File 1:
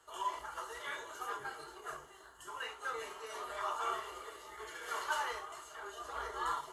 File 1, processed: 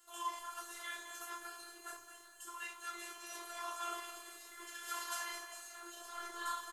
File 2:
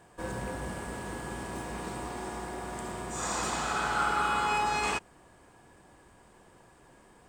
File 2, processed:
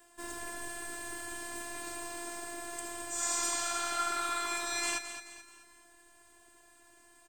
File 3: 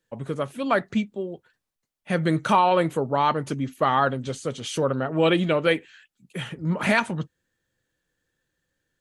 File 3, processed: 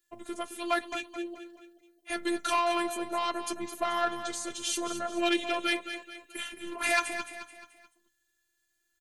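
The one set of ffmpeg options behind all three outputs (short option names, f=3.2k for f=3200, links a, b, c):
-af "highshelf=f=5.5k:g=-4.5,asoftclip=type=tanh:threshold=-11.5dB,afftfilt=real='hypot(re,im)*cos(PI*b)':imag='0':win_size=512:overlap=0.75,aecho=1:1:216|432|648|864:0.316|0.133|0.0558|0.0234,crystalizer=i=5:c=0,volume=-4dB"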